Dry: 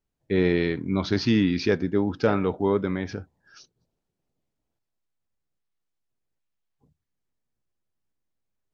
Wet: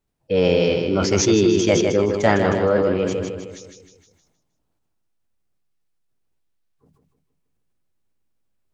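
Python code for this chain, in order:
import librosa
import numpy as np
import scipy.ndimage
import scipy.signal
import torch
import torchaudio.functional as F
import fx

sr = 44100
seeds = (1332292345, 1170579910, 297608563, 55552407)

y = fx.spec_box(x, sr, start_s=2.8, length_s=1.02, low_hz=500.0, high_hz=1800.0, gain_db=-10)
y = fx.formant_shift(y, sr, semitones=5)
y = fx.echo_feedback(y, sr, ms=156, feedback_pct=49, wet_db=-6.0)
y = fx.sustainer(y, sr, db_per_s=39.0)
y = y * librosa.db_to_amplitude(4.0)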